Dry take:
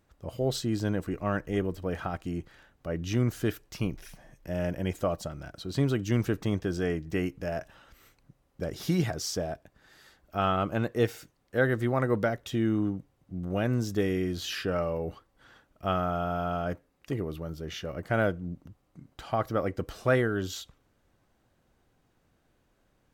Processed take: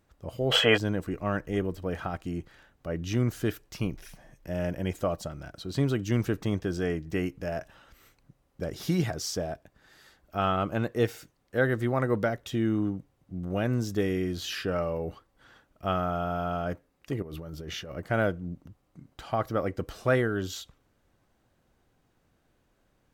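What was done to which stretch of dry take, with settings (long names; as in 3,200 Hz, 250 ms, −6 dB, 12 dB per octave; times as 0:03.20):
0:00.52–0:00.77: gain on a spectral selection 410–3,400 Hz +26 dB
0:17.22–0:17.91: compressor whose output falls as the input rises −39 dBFS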